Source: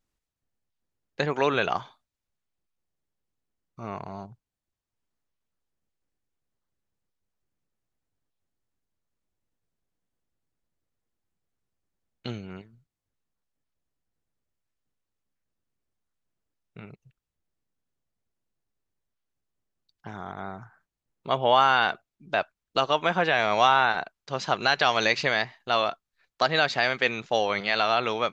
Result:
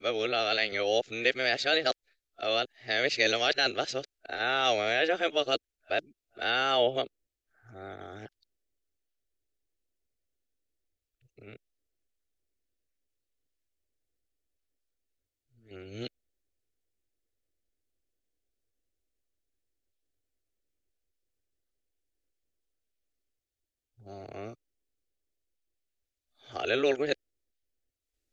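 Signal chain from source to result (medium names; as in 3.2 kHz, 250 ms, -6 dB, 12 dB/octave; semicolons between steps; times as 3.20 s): reverse the whole clip; static phaser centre 410 Hz, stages 4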